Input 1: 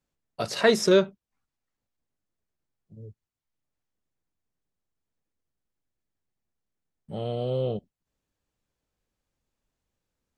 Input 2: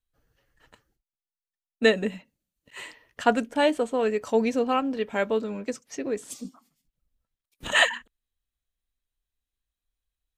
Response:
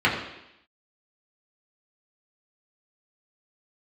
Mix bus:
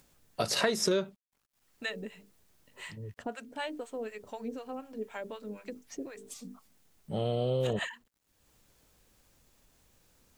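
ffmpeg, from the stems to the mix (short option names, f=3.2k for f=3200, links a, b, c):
-filter_complex "[0:a]acompressor=threshold=-26dB:ratio=10,highshelf=f=6.3k:g=7,acompressor=mode=upward:threshold=-53dB:ratio=2.5,volume=1dB[a];[1:a]bandreject=f=50:t=h:w=6,bandreject=f=100:t=h:w=6,bandreject=f=150:t=h:w=6,bandreject=f=200:t=h:w=6,bandreject=f=250:t=h:w=6,bandreject=f=300:t=h:w=6,bandreject=f=350:t=h:w=6,bandreject=f=400:t=h:w=6,bandreject=f=450:t=h:w=6,acompressor=threshold=-38dB:ratio=2,acrossover=split=660[b][c];[b]aeval=exprs='val(0)*(1-1/2+1/2*cos(2*PI*4*n/s))':c=same[d];[c]aeval=exprs='val(0)*(1-1/2-1/2*cos(2*PI*4*n/s))':c=same[e];[d][e]amix=inputs=2:normalize=0,volume=0.5dB[f];[a][f]amix=inputs=2:normalize=0,acrusher=bits=11:mix=0:aa=0.000001"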